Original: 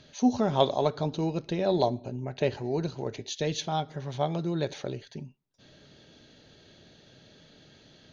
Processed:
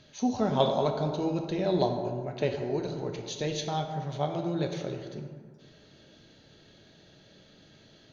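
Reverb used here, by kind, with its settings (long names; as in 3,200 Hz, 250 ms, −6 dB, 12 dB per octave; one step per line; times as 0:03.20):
dense smooth reverb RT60 1.8 s, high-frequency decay 0.45×, DRR 3.5 dB
level −2.5 dB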